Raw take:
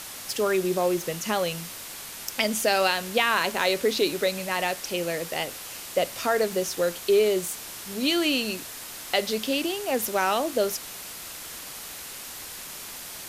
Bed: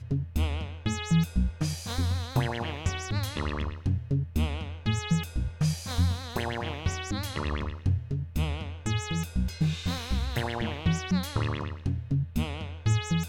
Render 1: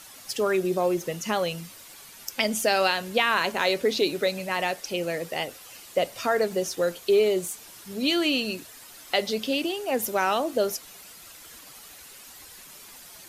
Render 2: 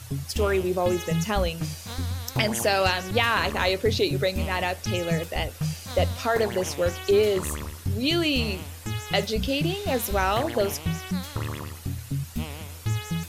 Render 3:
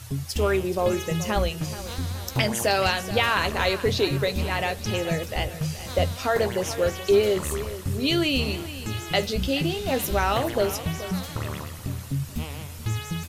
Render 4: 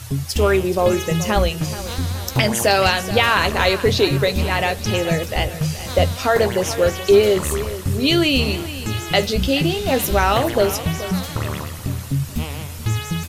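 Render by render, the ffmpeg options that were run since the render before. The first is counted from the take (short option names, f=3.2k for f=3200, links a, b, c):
-af "afftdn=nr=10:nf=-39"
-filter_complex "[1:a]volume=-2dB[a];[0:a][a]amix=inputs=2:normalize=0"
-filter_complex "[0:a]asplit=2[a][b];[b]adelay=15,volume=-12dB[c];[a][c]amix=inputs=2:normalize=0,aecho=1:1:428|856|1284|1712:0.2|0.0938|0.0441|0.0207"
-af "volume=6.5dB,alimiter=limit=-3dB:level=0:latency=1"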